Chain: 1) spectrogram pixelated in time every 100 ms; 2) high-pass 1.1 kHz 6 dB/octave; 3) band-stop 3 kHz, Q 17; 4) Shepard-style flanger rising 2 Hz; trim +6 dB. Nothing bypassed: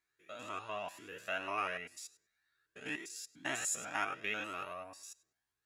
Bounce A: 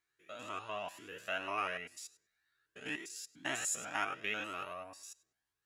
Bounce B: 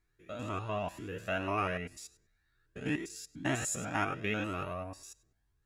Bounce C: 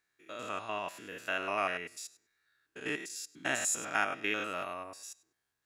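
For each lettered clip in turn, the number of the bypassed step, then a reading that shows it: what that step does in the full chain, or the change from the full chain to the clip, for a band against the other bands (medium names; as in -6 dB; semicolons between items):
3, 4 kHz band +1.5 dB; 2, 125 Hz band +16.5 dB; 4, loudness change +4.5 LU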